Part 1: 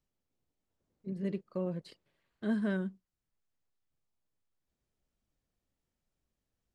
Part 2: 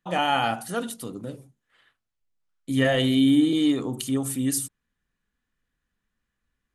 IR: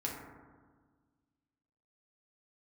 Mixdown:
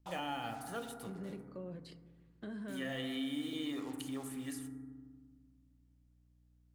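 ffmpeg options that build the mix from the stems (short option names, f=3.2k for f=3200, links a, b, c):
-filter_complex "[0:a]alimiter=level_in=9dB:limit=-24dB:level=0:latency=1,volume=-9dB,aeval=exprs='val(0)+0.000562*(sin(2*PI*60*n/s)+sin(2*PI*2*60*n/s)/2+sin(2*PI*3*60*n/s)/3+sin(2*PI*4*60*n/s)/4+sin(2*PI*5*60*n/s)/5)':c=same,volume=-4.5dB,asplit=3[a][b][c];[b]volume=-9dB[d];[1:a]equalizer=f=240:w=0.57:g=-6.5,acrusher=bits=6:mix=0:aa=0.5,volume=-11dB,asplit=2[e][f];[f]volume=-6dB[g];[c]apad=whole_len=297647[h];[e][h]sidechaincompress=threshold=-52dB:ratio=8:attack=16:release=173[i];[2:a]atrim=start_sample=2205[j];[d][g]amix=inputs=2:normalize=0[k];[k][j]afir=irnorm=-1:irlink=0[l];[a][i][l]amix=inputs=3:normalize=0,acrossover=split=480|2700[m][n][o];[m]acompressor=threshold=-42dB:ratio=4[p];[n]acompressor=threshold=-42dB:ratio=4[q];[o]acompressor=threshold=-52dB:ratio=4[r];[p][q][r]amix=inputs=3:normalize=0"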